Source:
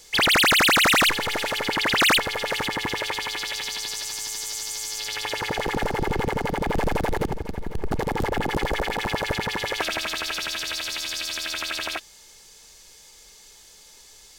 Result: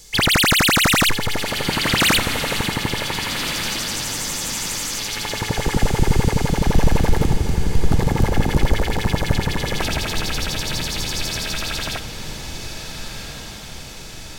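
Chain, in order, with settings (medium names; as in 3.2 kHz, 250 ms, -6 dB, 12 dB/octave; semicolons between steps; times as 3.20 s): tone controls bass +13 dB, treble +5 dB; 10.11–10.84 s: added noise brown -46 dBFS; echo that smears into a reverb 1517 ms, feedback 56%, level -9 dB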